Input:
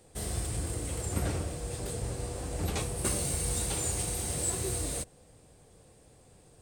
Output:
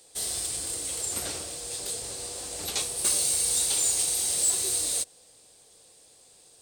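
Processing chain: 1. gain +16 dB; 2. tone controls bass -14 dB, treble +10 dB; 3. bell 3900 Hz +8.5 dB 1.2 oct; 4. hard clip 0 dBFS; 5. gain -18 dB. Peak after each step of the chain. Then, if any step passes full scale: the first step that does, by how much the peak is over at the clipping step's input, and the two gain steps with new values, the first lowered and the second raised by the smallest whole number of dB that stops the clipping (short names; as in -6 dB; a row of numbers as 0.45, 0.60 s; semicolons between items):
-1.0, +6.0, +8.0, 0.0, -18.0 dBFS; step 2, 8.0 dB; step 1 +8 dB, step 5 -10 dB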